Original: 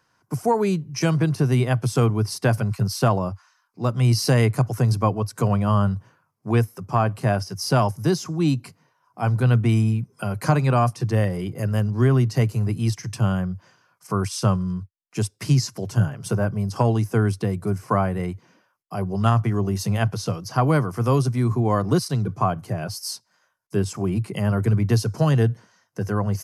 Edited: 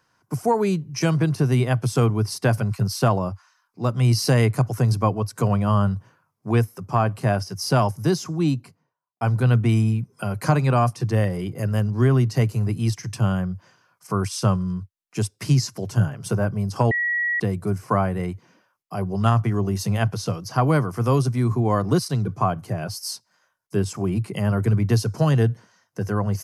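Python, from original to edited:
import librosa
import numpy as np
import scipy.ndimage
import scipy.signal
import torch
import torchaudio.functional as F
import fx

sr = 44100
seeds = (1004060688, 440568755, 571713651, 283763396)

y = fx.studio_fade_out(x, sr, start_s=8.31, length_s=0.9)
y = fx.edit(y, sr, fx.bleep(start_s=16.91, length_s=0.49, hz=1920.0, db=-20.0), tone=tone)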